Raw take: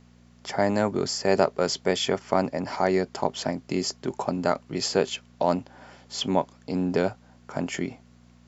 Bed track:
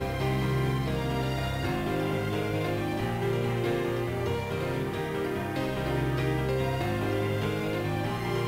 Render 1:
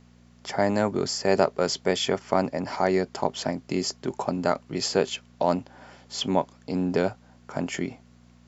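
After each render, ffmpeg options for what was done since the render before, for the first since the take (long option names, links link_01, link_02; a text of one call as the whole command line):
ffmpeg -i in.wav -af anull out.wav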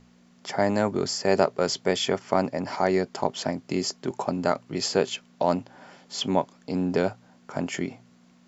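ffmpeg -i in.wav -af "bandreject=frequency=60:width_type=h:width=4,bandreject=frequency=120:width_type=h:width=4" out.wav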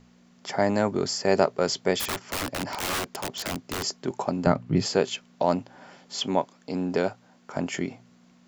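ffmpeg -i in.wav -filter_complex "[0:a]asplit=3[link_01][link_02][link_03];[link_01]afade=type=out:start_time=1.99:duration=0.02[link_04];[link_02]aeval=exprs='(mod(15*val(0)+1,2)-1)/15':channel_layout=same,afade=type=in:start_time=1.99:duration=0.02,afade=type=out:start_time=3.82:duration=0.02[link_05];[link_03]afade=type=in:start_time=3.82:duration=0.02[link_06];[link_04][link_05][link_06]amix=inputs=3:normalize=0,asettb=1/sr,asplit=3[link_07][link_08][link_09];[link_07]atrim=end=4.464[link_10];[link_08]atrim=start=4.46:end=4.86,asetpts=PTS-STARTPTS,afade=type=in:duration=0.004:curve=qsin,afade=type=out:start_time=0.396:duration=0.004:curve=qsin,bass=frequency=250:gain=15,treble=frequency=4000:gain=-9[link_11];[link_09]atrim=start=4.856[link_12];[link_10][link_11]acrossfade=duration=0.004:curve1=hsin:curve2=qsin[link_13];[link_13][link_12]acrossfade=duration=0.004:curve1=qsin:curve2=hsin,asettb=1/sr,asplit=3[link_14][link_15][link_16];[link_14]atrim=end=6.174[link_17];[link_15]atrim=start=6.17:end=7.57,asetpts=PTS-STARTPTS,afade=type=in:duration=0.004:curve=qsin,afade=type=out:start_time=1.396:duration=0.004:curve=qsin,lowshelf=frequency=160:gain=-7.5[link_18];[link_16]atrim=start=7.566[link_19];[link_17][link_18]acrossfade=duration=0.004:curve1=hsin:curve2=qsin[link_20];[link_20][link_19]acrossfade=duration=0.004:curve1=qsin:curve2=hsin" out.wav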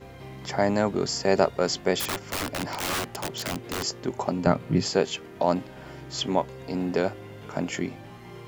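ffmpeg -i in.wav -i bed.wav -filter_complex "[1:a]volume=-14dB[link_01];[0:a][link_01]amix=inputs=2:normalize=0" out.wav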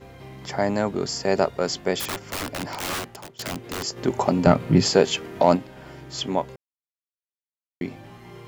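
ffmpeg -i in.wav -filter_complex "[0:a]asplit=3[link_01][link_02][link_03];[link_01]afade=type=out:start_time=3.96:duration=0.02[link_04];[link_02]acontrast=73,afade=type=in:start_time=3.96:duration=0.02,afade=type=out:start_time=5.55:duration=0.02[link_05];[link_03]afade=type=in:start_time=5.55:duration=0.02[link_06];[link_04][link_05][link_06]amix=inputs=3:normalize=0,asplit=4[link_07][link_08][link_09][link_10];[link_07]atrim=end=3.39,asetpts=PTS-STARTPTS,afade=type=out:start_time=2.93:duration=0.46:silence=0.0891251[link_11];[link_08]atrim=start=3.39:end=6.56,asetpts=PTS-STARTPTS,afade=type=in:duration=0.004:curve=hsin:silence=0.0891251,afade=type=out:start_time=3.166:duration=0.004:curve=hsin[link_12];[link_09]atrim=start=6.56:end=7.81,asetpts=PTS-STARTPTS,volume=0[link_13];[link_10]atrim=start=7.81,asetpts=PTS-STARTPTS,afade=type=in:duration=0.004:curve=hsin[link_14];[link_11][link_12][link_13][link_14]concat=n=4:v=0:a=1" out.wav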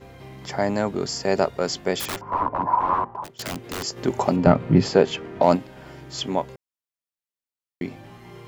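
ffmpeg -i in.wav -filter_complex "[0:a]asettb=1/sr,asplit=3[link_01][link_02][link_03];[link_01]atrim=end=2.214[link_04];[link_02]atrim=start=2.21:end=3.24,asetpts=PTS-STARTPTS,afade=type=in:duration=0.004:curve=qsin,afade=type=out:start_time=1.026:duration=0.004:curve=qsin,lowpass=frequency=1000:width_type=q:width=12[link_05];[link_03]atrim=start=3.236[link_06];[link_04][link_05]acrossfade=duration=0.004:curve1=hsin:curve2=qsin[link_07];[link_07][link_06]acrossfade=duration=0.004:curve1=qsin:curve2=hsin,asettb=1/sr,asplit=3[link_08][link_09][link_10];[link_08]atrim=end=4.364[link_11];[link_09]atrim=start=4.36:end=5.43,asetpts=PTS-STARTPTS,afade=type=in:duration=0.004:curve=qsin,afade=type=out:start_time=1.066:duration=0.004:curve=qsin,aemphasis=mode=reproduction:type=75fm[link_12];[link_10]atrim=start=5.426[link_13];[link_11][link_12]acrossfade=duration=0.004:curve1=hsin:curve2=qsin[link_14];[link_14][link_13]acrossfade=duration=0.004:curve1=qsin:curve2=hsin" out.wav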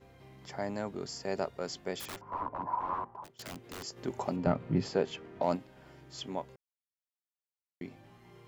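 ffmpeg -i in.wav -af "volume=-13dB" out.wav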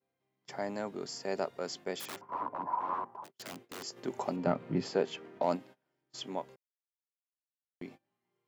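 ffmpeg -i in.wav -af "highpass=190,agate=range=-26dB:threshold=-50dB:ratio=16:detection=peak" out.wav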